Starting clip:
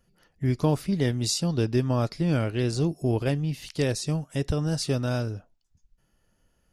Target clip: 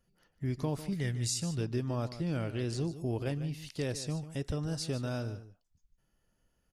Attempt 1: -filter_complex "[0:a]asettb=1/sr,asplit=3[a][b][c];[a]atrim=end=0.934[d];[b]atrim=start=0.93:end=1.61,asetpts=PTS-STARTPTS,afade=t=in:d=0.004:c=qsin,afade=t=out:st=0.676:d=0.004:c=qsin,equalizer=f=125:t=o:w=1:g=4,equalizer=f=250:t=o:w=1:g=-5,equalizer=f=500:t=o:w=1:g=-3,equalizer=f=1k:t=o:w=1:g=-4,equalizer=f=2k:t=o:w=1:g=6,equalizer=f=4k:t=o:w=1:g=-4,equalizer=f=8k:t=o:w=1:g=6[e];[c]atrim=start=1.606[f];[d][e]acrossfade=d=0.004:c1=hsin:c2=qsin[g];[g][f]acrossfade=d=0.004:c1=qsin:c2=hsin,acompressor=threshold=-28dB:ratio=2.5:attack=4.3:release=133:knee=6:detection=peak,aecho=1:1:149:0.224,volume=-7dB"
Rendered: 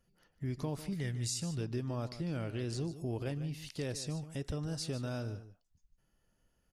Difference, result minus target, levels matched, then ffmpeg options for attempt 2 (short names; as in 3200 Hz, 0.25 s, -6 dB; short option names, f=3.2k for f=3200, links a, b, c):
compressor: peak gain reduction +4 dB
-filter_complex "[0:a]asettb=1/sr,asplit=3[a][b][c];[a]atrim=end=0.934[d];[b]atrim=start=0.93:end=1.61,asetpts=PTS-STARTPTS,afade=t=in:d=0.004:c=qsin,afade=t=out:st=0.676:d=0.004:c=qsin,equalizer=f=125:t=o:w=1:g=4,equalizer=f=250:t=o:w=1:g=-5,equalizer=f=500:t=o:w=1:g=-3,equalizer=f=1k:t=o:w=1:g=-4,equalizer=f=2k:t=o:w=1:g=6,equalizer=f=4k:t=o:w=1:g=-4,equalizer=f=8k:t=o:w=1:g=6[e];[c]atrim=start=1.606[f];[d][e]acrossfade=d=0.004:c1=hsin:c2=qsin[g];[g][f]acrossfade=d=0.004:c1=qsin:c2=hsin,acompressor=threshold=-21dB:ratio=2.5:attack=4.3:release=133:knee=6:detection=peak,aecho=1:1:149:0.224,volume=-7dB"